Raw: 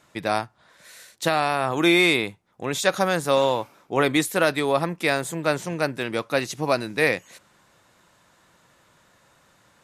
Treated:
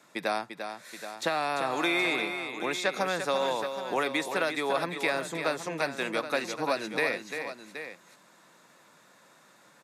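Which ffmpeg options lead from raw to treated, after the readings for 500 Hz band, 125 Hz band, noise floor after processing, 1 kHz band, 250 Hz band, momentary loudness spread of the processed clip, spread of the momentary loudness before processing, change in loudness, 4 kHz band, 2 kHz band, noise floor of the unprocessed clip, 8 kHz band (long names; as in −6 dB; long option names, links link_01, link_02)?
−7.0 dB, −13.5 dB, −59 dBFS, −5.0 dB, −9.5 dB, 11 LU, 9 LU, −7.0 dB, −6.5 dB, −5.0 dB, −60 dBFS, −8.5 dB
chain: -filter_complex "[0:a]highpass=frequency=170:width=0.5412,highpass=frequency=170:width=1.3066,bandreject=frequency=3000:width=13,acrossover=split=520|2900|6400[link_01][link_02][link_03][link_04];[link_01]acompressor=threshold=-37dB:ratio=4[link_05];[link_02]acompressor=threshold=-28dB:ratio=4[link_06];[link_03]acompressor=threshold=-40dB:ratio=4[link_07];[link_04]acompressor=threshold=-53dB:ratio=4[link_08];[link_05][link_06][link_07][link_08]amix=inputs=4:normalize=0,asplit=2[link_09][link_10];[link_10]aecho=0:1:345|774:0.398|0.266[link_11];[link_09][link_11]amix=inputs=2:normalize=0"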